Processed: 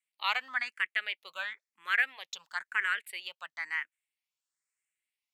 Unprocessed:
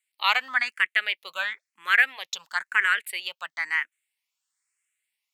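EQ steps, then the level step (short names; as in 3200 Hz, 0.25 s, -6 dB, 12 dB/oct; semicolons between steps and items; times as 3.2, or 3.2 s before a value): high shelf 9700 Hz -5 dB; -8.0 dB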